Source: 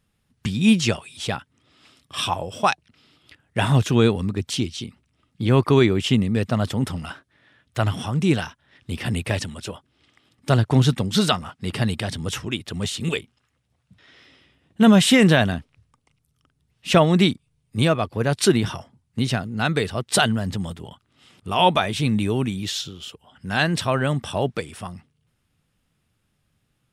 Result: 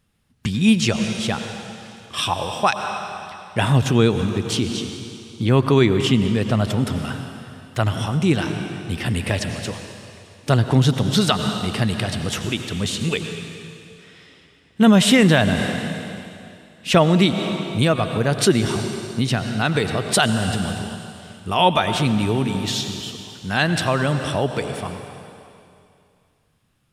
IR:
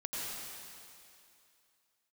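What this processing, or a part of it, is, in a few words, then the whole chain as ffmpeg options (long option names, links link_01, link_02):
ducked reverb: -filter_complex "[0:a]asplit=3[link_01][link_02][link_03];[1:a]atrim=start_sample=2205[link_04];[link_02][link_04]afir=irnorm=-1:irlink=0[link_05];[link_03]apad=whole_len=1187501[link_06];[link_05][link_06]sidechaincompress=threshold=-22dB:ratio=5:attack=9.6:release=160,volume=-5.5dB[link_07];[link_01][link_07]amix=inputs=2:normalize=0"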